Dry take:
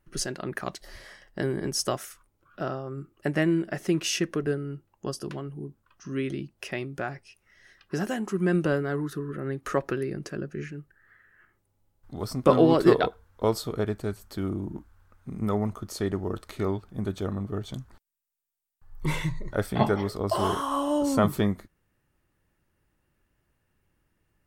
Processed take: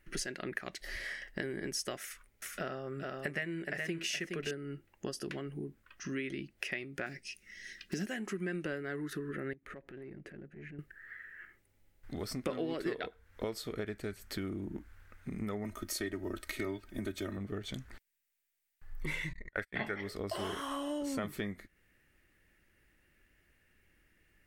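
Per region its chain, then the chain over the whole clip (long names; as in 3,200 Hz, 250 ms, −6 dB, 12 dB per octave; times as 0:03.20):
0:02.00–0:04.51: notch filter 310 Hz, Q 5.2 + single-tap delay 419 ms −6.5 dB
0:07.06–0:08.06: one scale factor per block 7 bits + drawn EQ curve 120 Hz 0 dB, 200 Hz +8 dB, 970 Hz −10 dB, 6,200 Hz +8 dB, 14,000 Hz +1 dB
0:09.53–0:10.79: drawn EQ curve 160 Hz 0 dB, 3,900 Hz −13 dB, 5,500 Hz −25 dB, 8,600 Hz −16 dB + downward compressor 20 to 1, threshold −42 dBFS + transient designer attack −11 dB, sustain −5 dB
0:15.64–0:17.37: high-shelf EQ 7,900 Hz +9 dB + comb filter 3.2 ms, depth 79%
0:19.33–0:20.01: noise gate −30 dBFS, range −37 dB + parametric band 1,800 Hz +10 dB 0.83 octaves
whole clip: octave-band graphic EQ 125/1,000/2,000 Hz −7/−9/+11 dB; downward compressor 4 to 1, threshold −40 dBFS; level +3 dB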